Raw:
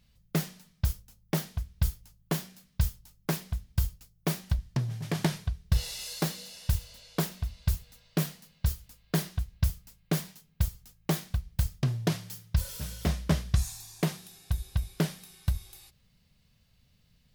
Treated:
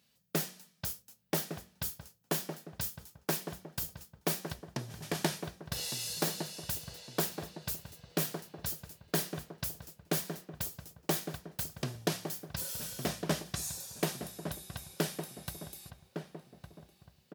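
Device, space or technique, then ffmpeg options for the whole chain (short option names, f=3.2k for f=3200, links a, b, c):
exciter from parts: -filter_complex "[0:a]asplit=2[a][b];[b]highpass=4.7k,asoftclip=type=tanh:threshold=-32dB,volume=-7dB[c];[a][c]amix=inputs=2:normalize=0,highpass=260,equalizer=f=1.1k:t=o:w=0.36:g=-2.5,bandreject=f=2.1k:w=20,asplit=2[d][e];[e]adelay=1159,lowpass=f=1.3k:p=1,volume=-7dB,asplit=2[f][g];[g]adelay=1159,lowpass=f=1.3k:p=1,volume=0.45,asplit=2[h][i];[i]adelay=1159,lowpass=f=1.3k:p=1,volume=0.45,asplit=2[j][k];[k]adelay=1159,lowpass=f=1.3k:p=1,volume=0.45,asplit=2[l][m];[m]adelay=1159,lowpass=f=1.3k:p=1,volume=0.45[n];[d][f][h][j][l][n]amix=inputs=6:normalize=0"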